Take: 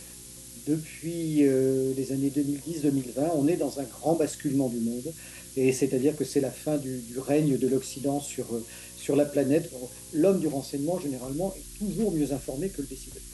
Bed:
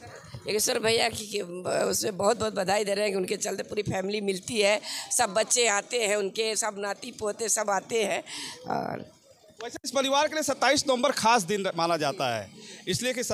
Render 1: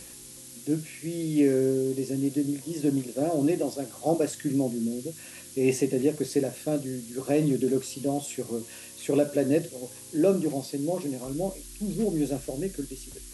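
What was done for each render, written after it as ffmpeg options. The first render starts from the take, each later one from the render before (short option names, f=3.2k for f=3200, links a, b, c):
-af "bandreject=f=60:t=h:w=4,bandreject=f=120:t=h:w=4,bandreject=f=180:t=h:w=4"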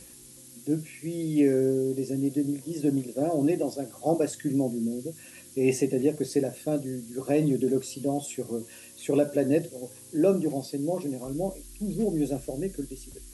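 -af "afftdn=nr=6:nf=-45"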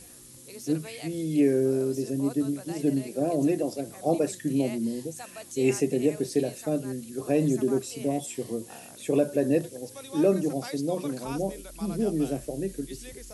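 -filter_complex "[1:a]volume=-18.5dB[a];[0:a][a]amix=inputs=2:normalize=0"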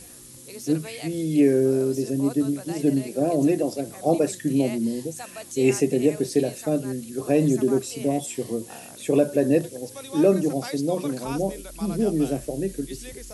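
-af "volume=4dB"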